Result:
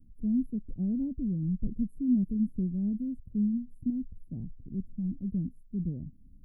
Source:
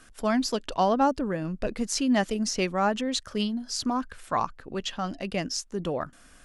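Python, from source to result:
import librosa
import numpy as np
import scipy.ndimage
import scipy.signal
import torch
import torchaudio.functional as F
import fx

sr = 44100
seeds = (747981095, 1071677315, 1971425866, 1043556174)

y = scipy.signal.sosfilt(scipy.signal.cheby2(4, 80, [1100.0, 6200.0], 'bandstop', fs=sr, output='sos'), x)
y = y * 10.0 ** (4.0 / 20.0)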